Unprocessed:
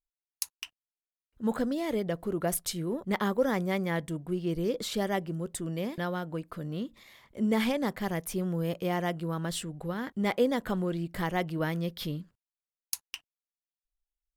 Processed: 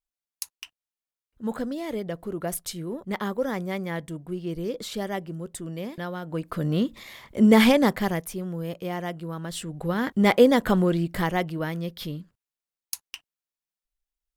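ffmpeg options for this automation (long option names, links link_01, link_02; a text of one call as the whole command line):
ffmpeg -i in.wav -af "volume=21.5dB,afade=type=in:start_time=6.21:duration=0.46:silence=0.266073,afade=type=out:start_time=7.75:duration=0.58:silence=0.251189,afade=type=in:start_time=9.52:duration=0.55:silence=0.298538,afade=type=out:start_time=10.79:duration=0.82:silence=0.375837" out.wav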